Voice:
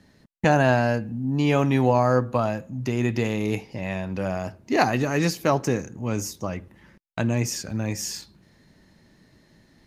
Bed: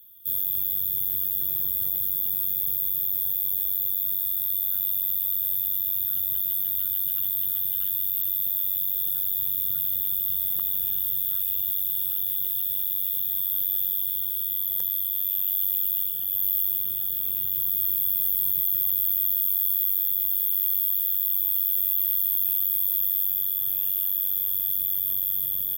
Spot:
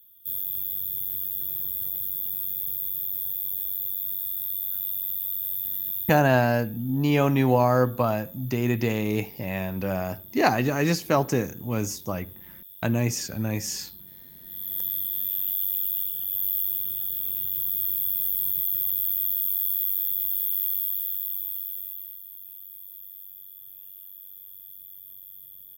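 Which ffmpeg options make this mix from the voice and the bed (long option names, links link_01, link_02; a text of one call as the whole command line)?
ffmpeg -i stem1.wav -i stem2.wav -filter_complex "[0:a]adelay=5650,volume=-0.5dB[link_01];[1:a]volume=13.5dB,afade=type=out:start_time=6:duration=0.22:silence=0.16788,afade=type=in:start_time=14.43:duration=0.41:silence=0.133352,afade=type=out:start_time=20.59:duration=1.61:silence=0.141254[link_02];[link_01][link_02]amix=inputs=2:normalize=0" out.wav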